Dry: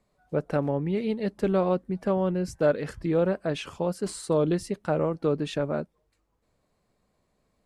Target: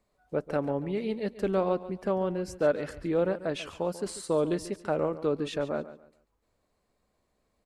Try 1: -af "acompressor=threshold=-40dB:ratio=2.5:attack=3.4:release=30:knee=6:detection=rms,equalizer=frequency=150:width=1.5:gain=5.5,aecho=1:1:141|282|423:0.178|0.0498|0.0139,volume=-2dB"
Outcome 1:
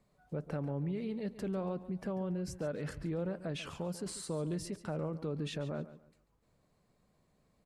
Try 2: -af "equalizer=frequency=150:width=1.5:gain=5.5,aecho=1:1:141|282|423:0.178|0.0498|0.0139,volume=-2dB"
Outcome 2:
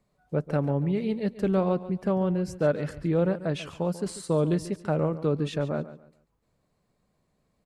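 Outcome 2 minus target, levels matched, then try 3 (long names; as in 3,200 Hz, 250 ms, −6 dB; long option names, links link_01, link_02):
125 Hz band +7.0 dB
-af "equalizer=frequency=150:width=1.5:gain=-6,aecho=1:1:141|282|423:0.178|0.0498|0.0139,volume=-2dB"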